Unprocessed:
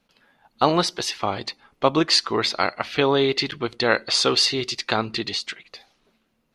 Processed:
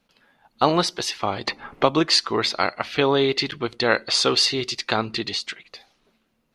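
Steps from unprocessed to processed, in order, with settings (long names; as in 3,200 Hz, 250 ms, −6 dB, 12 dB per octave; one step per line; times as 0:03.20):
0:01.47–0:02.09: multiband upward and downward compressor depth 70%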